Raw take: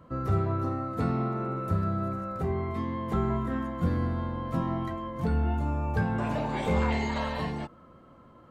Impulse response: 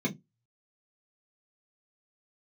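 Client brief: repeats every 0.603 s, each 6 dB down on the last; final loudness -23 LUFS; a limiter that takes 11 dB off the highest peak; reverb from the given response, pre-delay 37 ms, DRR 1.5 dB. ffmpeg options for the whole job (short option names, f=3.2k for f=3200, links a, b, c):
-filter_complex "[0:a]alimiter=level_in=1.5dB:limit=-24dB:level=0:latency=1,volume=-1.5dB,aecho=1:1:603|1206|1809|2412|3015|3618:0.501|0.251|0.125|0.0626|0.0313|0.0157,asplit=2[a][b];[1:a]atrim=start_sample=2205,adelay=37[c];[b][c]afir=irnorm=-1:irlink=0,volume=-8dB[d];[a][d]amix=inputs=2:normalize=0"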